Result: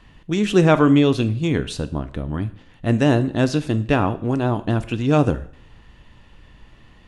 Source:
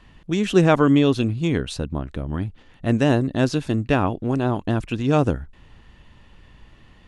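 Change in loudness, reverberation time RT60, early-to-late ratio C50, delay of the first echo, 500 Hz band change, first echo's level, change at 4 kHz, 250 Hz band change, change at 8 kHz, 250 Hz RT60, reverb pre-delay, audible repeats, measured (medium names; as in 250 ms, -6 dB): +1.5 dB, 0.55 s, 16.5 dB, no echo, +1.0 dB, no echo, +1.5 dB, +1.5 dB, +1.5 dB, 0.60 s, 4 ms, no echo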